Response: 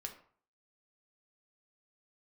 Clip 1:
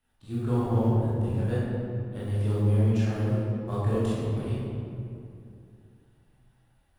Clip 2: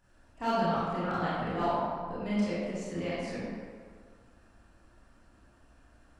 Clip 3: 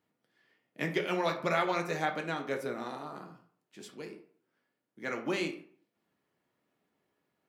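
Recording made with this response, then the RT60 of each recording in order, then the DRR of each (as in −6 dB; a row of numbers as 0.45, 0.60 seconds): 3; 2.5, 1.8, 0.50 seconds; −10.5, −11.0, 2.5 decibels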